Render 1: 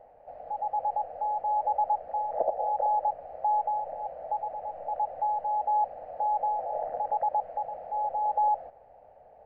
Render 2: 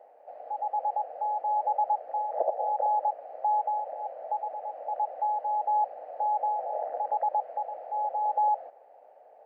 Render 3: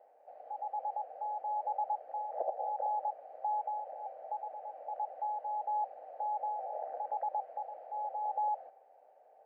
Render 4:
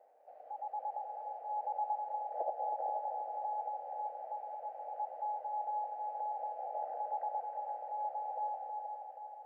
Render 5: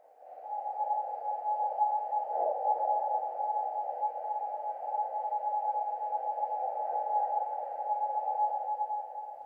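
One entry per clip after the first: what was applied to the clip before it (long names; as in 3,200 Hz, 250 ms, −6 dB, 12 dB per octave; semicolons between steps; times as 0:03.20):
high-pass filter 330 Hz 24 dB per octave
tuned comb filter 780 Hz, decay 0.33 s, mix 70%; level +2 dB
echo machine with several playback heads 159 ms, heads second and third, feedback 57%, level −7.5 dB; level −2.5 dB
random phases in long frames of 200 ms; level +7 dB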